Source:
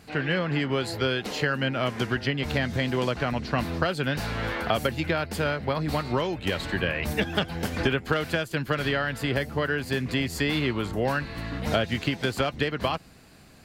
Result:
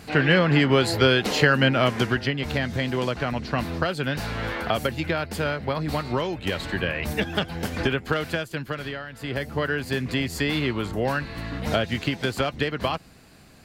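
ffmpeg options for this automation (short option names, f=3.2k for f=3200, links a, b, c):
-af "volume=19dB,afade=t=out:st=1.64:d=0.72:silence=0.446684,afade=t=out:st=8.22:d=0.88:silence=0.281838,afade=t=in:st=9.1:d=0.45:silence=0.266073"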